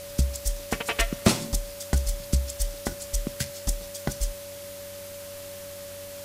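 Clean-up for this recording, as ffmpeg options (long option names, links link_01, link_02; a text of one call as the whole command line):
ffmpeg -i in.wav -af "adeclick=threshold=4,bandreject=frequency=94:width_type=h:width=4,bandreject=frequency=188:width_type=h:width=4,bandreject=frequency=282:width_type=h:width=4,bandreject=frequency=376:width_type=h:width=4,bandreject=frequency=470:width_type=h:width=4,bandreject=frequency=564:width_type=h:width=4,bandreject=frequency=570:width=30,afwtdn=0.0071" out.wav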